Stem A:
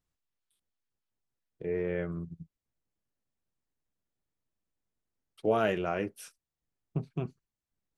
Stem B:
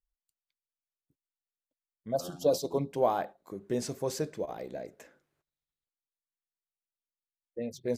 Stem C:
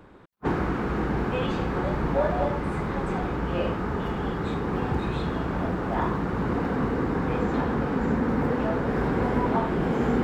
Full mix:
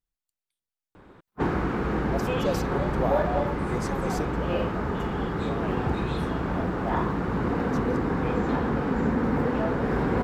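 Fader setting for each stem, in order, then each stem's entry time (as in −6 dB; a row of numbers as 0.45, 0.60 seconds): −10.0, −2.5, 0.0 decibels; 0.00, 0.00, 0.95 seconds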